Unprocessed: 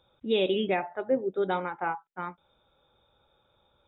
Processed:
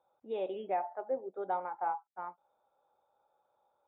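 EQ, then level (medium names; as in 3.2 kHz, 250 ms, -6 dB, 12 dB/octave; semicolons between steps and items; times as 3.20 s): band-pass filter 780 Hz, Q 2.6; distance through air 150 m; 0.0 dB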